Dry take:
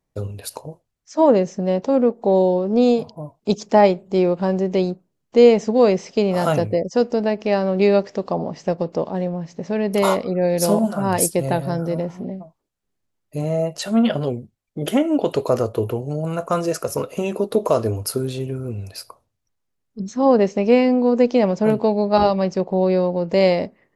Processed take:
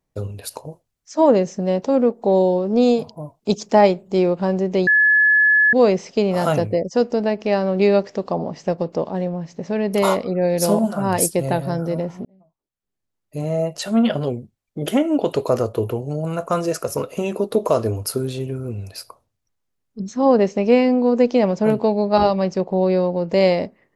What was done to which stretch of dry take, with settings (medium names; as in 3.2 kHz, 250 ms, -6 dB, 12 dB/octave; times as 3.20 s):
0.65–4.30 s: treble shelf 5.3 kHz +4.5 dB
4.87–5.73 s: bleep 1.71 kHz -11 dBFS
12.25–13.61 s: fade in